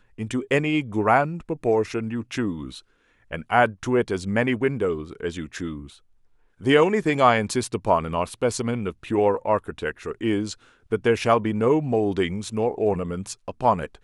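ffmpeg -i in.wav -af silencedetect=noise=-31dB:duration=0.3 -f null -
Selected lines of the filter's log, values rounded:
silence_start: 2.77
silence_end: 3.32 | silence_duration: 0.55
silence_start: 5.79
silence_end: 6.64 | silence_duration: 0.85
silence_start: 10.53
silence_end: 10.92 | silence_duration: 0.39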